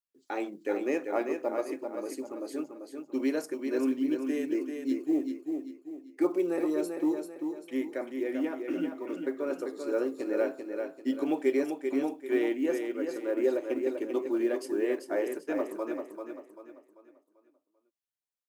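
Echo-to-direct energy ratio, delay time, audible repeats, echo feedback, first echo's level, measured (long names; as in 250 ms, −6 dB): −5.5 dB, 391 ms, 4, 38%, −6.0 dB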